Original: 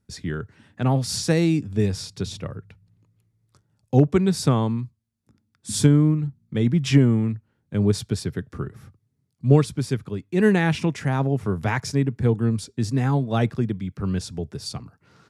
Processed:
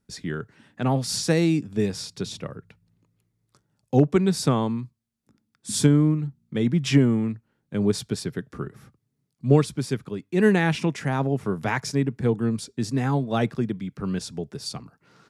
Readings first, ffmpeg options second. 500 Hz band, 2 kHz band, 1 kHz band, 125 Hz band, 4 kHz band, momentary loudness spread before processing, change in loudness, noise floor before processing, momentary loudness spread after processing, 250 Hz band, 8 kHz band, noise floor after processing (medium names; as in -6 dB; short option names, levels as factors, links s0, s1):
0.0 dB, 0.0 dB, 0.0 dB, -3.5 dB, 0.0 dB, 15 LU, -1.5 dB, -73 dBFS, 14 LU, -1.0 dB, 0.0 dB, -76 dBFS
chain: -af "equalizer=f=87:w=2:g=-13.5"